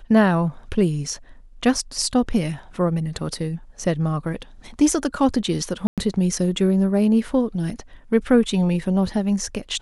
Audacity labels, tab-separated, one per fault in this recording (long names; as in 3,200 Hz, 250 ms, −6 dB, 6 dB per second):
5.870000	5.980000	drop-out 107 ms